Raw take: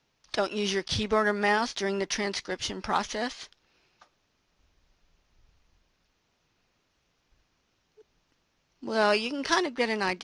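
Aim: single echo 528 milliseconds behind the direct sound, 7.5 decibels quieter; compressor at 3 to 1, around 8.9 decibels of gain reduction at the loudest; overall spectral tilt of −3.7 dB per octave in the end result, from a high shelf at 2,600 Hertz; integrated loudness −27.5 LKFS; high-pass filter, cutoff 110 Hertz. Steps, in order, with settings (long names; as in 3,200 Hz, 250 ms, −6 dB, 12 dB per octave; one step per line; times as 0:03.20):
high-pass filter 110 Hz
high-shelf EQ 2,600 Hz −5.5 dB
downward compressor 3 to 1, threshold −32 dBFS
single-tap delay 528 ms −7.5 dB
level +7.5 dB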